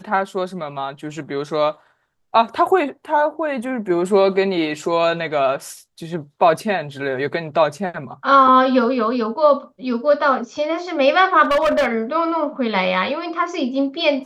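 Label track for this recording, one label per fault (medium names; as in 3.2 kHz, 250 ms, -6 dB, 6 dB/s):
11.430000	11.870000	clipped -13 dBFS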